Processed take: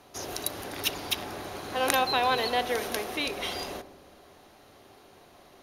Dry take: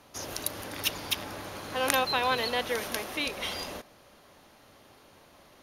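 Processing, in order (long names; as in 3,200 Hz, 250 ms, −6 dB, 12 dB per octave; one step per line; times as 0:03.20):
hollow resonant body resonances 390/720/3,900 Hz, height 8 dB
on a send: feedback echo with a low-pass in the loop 62 ms, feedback 84%, low-pass 1,500 Hz, level −15 dB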